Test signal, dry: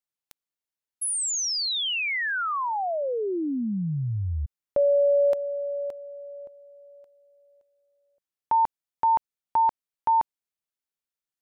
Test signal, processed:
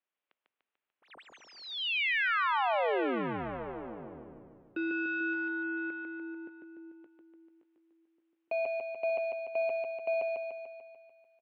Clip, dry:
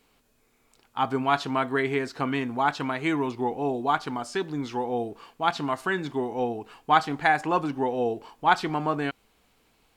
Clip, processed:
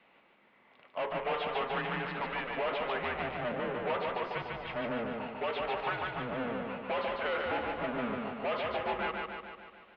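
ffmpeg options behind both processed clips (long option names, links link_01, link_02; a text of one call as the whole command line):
ffmpeg -i in.wav -af "aeval=exprs='(tanh(56.2*val(0)+0.1)-tanh(0.1))/56.2':channel_layout=same,aecho=1:1:147|294|441|588|735|882|1029|1176|1323:0.708|0.418|0.246|0.145|0.0858|0.0506|0.0299|0.0176|0.0104,highpass=frequency=540:width_type=q:width=0.5412,highpass=frequency=540:width_type=q:width=1.307,lowpass=frequency=3300:width_type=q:width=0.5176,lowpass=frequency=3300:width_type=q:width=0.7071,lowpass=frequency=3300:width_type=q:width=1.932,afreqshift=-240,volume=5dB" out.wav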